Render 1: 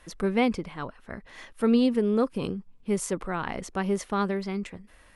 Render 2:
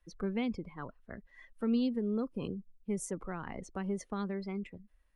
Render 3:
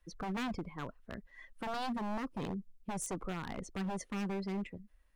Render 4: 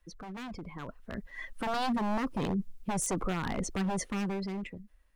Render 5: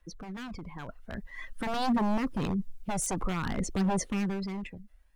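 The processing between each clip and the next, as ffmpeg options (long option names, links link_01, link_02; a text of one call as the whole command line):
ffmpeg -i in.wav -filter_complex "[0:a]afftdn=noise_reduction=19:noise_floor=-40,acrossover=split=300|3000[link_01][link_02][link_03];[link_02]acompressor=threshold=-32dB:ratio=6[link_04];[link_01][link_04][link_03]amix=inputs=3:normalize=0,volume=-6.5dB" out.wav
ffmpeg -i in.wav -af "aeval=exprs='0.0211*(abs(mod(val(0)/0.0211+3,4)-2)-1)':channel_layout=same,volume=2dB" out.wav
ffmpeg -i in.wav -af "alimiter=level_in=14.5dB:limit=-24dB:level=0:latency=1:release=12,volume=-14.5dB,dynaudnorm=framelen=250:gausssize=9:maxgain=12dB,volume=1.5dB" out.wav
ffmpeg -i in.wav -af "aphaser=in_gain=1:out_gain=1:delay=1.5:decay=0.39:speed=0.51:type=triangular" out.wav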